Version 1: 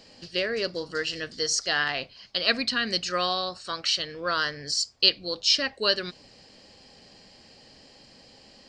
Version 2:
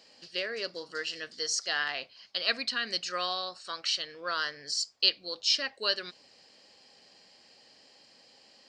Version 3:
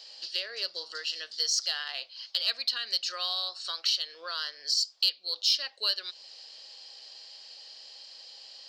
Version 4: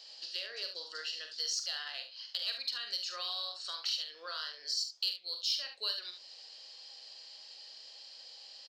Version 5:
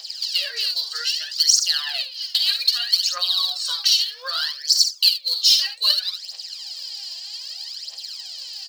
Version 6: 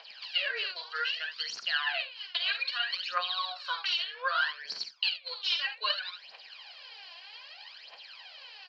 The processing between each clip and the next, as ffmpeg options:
-af "highpass=f=560:p=1,volume=-4.5dB"
-filter_complex "[0:a]acrossover=split=450 4800:gain=0.0708 1 0.0794[a][b][c];[a][b][c]amix=inputs=3:normalize=0,acompressor=threshold=-45dB:ratio=2,aexciter=amount=2.5:drive=9.7:freq=3.2k,volume=2.5dB"
-filter_complex "[0:a]asplit=2[a][b];[b]acompressor=threshold=-36dB:ratio=6,volume=-0.5dB[c];[a][c]amix=inputs=2:normalize=0,flanger=delay=6.8:depth=3.6:regen=86:speed=1.6:shape=triangular,aecho=1:1:45|72:0.398|0.316,volume=-5.5dB"
-af "highpass=f=600:w=0.5412,highpass=f=600:w=1.3066,aphaser=in_gain=1:out_gain=1:delay=3:decay=0.72:speed=0.63:type=triangular,crystalizer=i=4:c=0,volume=5dB"
-af "highpass=200,equalizer=f=200:t=q:w=4:g=7,equalizer=f=430:t=q:w=4:g=7,equalizer=f=690:t=q:w=4:g=4,equalizer=f=1k:t=q:w=4:g=8,equalizer=f=1.5k:t=q:w=4:g=8,equalizer=f=2.4k:t=q:w=4:g=7,lowpass=f=2.9k:w=0.5412,lowpass=f=2.9k:w=1.3066,volume=-3.5dB"

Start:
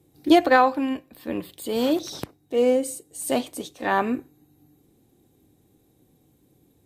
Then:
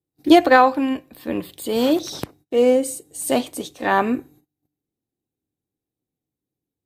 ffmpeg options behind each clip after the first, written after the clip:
-af "agate=range=-29dB:threshold=-52dB:ratio=16:detection=peak,volume=4dB"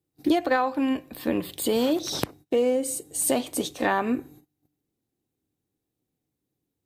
-af "acompressor=threshold=-25dB:ratio=5,volume=4dB"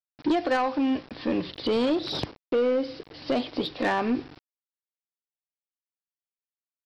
-af "aresample=11025,acrusher=bits=7:mix=0:aa=0.000001,aresample=44100,asoftclip=type=tanh:threshold=-20dB,volume=2dB"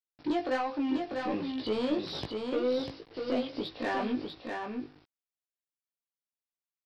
-af "flanger=delay=17.5:depth=2.6:speed=1.3,aecho=1:1:645:0.562,volume=-4dB"

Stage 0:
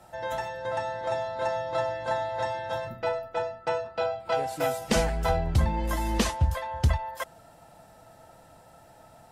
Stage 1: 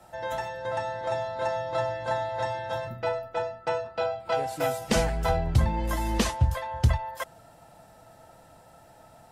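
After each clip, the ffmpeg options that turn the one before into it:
-af "adynamicequalizer=threshold=0.00316:dfrequency=120:dqfactor=5.8:tfrequency=120:tqfactor=5.8:attack=5:release=100:ratio=0.375:range=3.5:mode=boostabove:tftype=bell"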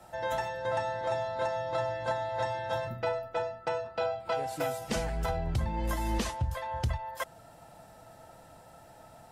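-af "alimiter=limit=-21dB:level=0:latency=1:release=363"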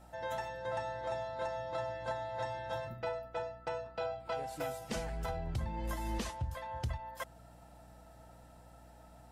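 -af "aeval=exprs='val(0)+0.00282*(sin(2*PI*60*n/s)+sin(2*PI*2*60*n/s)/2+sin(2*PI*3*60*n/s)/3+sin(2*PI*4*60*n/s)/4+sin(2*PI*5*60*n/s)/5)':c=same,volume=-6.5dB"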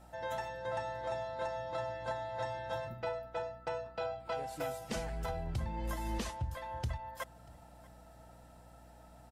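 -af "aecho=1:1:638:0.0708"

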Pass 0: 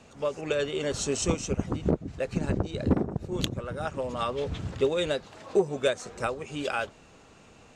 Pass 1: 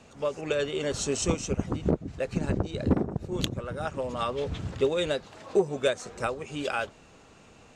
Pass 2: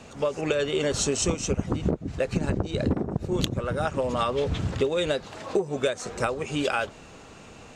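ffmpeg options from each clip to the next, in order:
-af anull
-af "acompressor=threshold=-29dB:ratio=6,volume=7.5dB"

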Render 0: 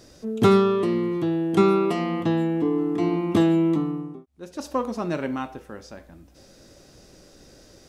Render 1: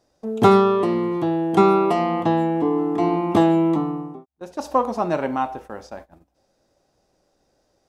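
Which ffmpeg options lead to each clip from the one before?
-af "agate=range=-19dB:threshold=-44dB:ratio=16:detection=peak,equalizer=f=800:w=1.3:g=12"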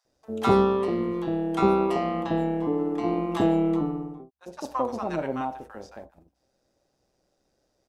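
-filter_complex "[0:a]acrossover=split=870[a][b];[a]adelay=50[c];[c][b]amix=inputs=2:normalize=0,tremolo=f=130:d=0.462,volume=-3dB"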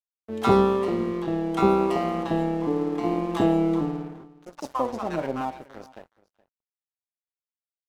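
-af "aeval=exprs='sgn(val(0))*max(abs(val(0))-0.00596,0)':c=same,aecho=1:1:421:0.0794,volume=1.5dB"

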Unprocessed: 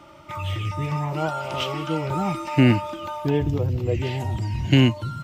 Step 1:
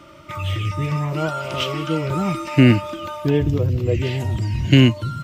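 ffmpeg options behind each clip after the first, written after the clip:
-af "equalizer=f=830:w=4.9:g=-13,volume=4dB"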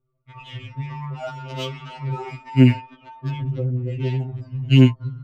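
-af "anlmdn=100,afftfilt=real='re*2.45*eq(mod(b,6),0)':imag='im*2.45*eq(mod(b,6),0)':win_size=2048:overlap=0.75,volume=-4dB"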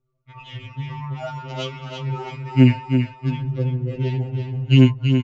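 -filter_complex "[0:a]asplit=2[a][b];[b]aecho=0:1:332|664|996|1328:0.473|0.175|0.0648|0.024[c];[a][c]amix=inputs=2:normalize=0,aresample=16000,aresample=44100"

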